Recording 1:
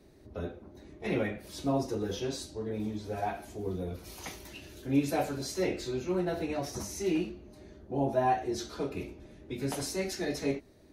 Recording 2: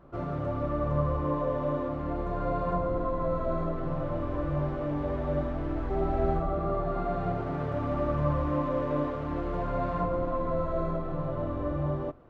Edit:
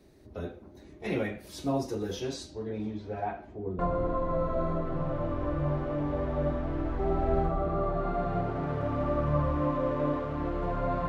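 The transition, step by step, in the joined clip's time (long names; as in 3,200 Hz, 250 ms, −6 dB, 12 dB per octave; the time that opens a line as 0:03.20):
recording 1
0:02.33–0:03.79: low-pass filter 8,200 Hz → 1,000 Hz
0:03.79: continue with recording 2 from 0:02.70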